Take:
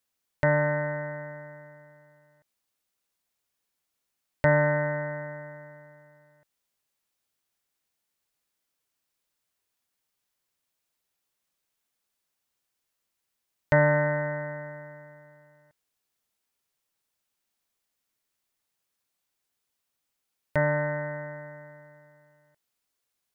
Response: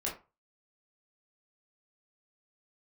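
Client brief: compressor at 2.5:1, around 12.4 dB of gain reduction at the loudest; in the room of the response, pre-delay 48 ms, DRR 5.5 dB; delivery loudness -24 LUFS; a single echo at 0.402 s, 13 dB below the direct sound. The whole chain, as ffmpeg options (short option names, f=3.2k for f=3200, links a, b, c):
-filter_complex "[0:a]acompressor=threshold=-36dB:ratio=2.5,aecho=1:1:402:0.224,asplit=2[a][b];[1:a]atrim=start_sample=2205,adelay=48[c];[b][c]afir=irnorm=-1:irlink=0,volume=-8.5dB[d];[a][d]amix=inputs=2:normalize=0,volume=14dB"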